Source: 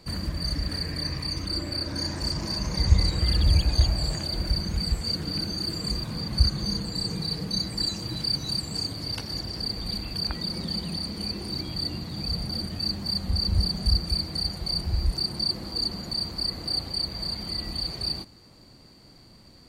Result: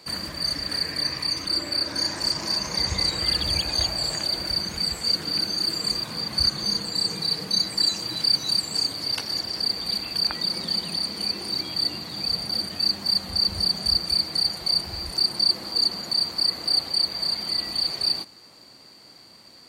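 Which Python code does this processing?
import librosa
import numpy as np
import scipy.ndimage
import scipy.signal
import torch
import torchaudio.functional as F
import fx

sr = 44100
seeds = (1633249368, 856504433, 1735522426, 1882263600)

y = fx.highpass(x, sr, hz=700.0, slope=6)
y = y * librosa.db_to_amplitude(6.5)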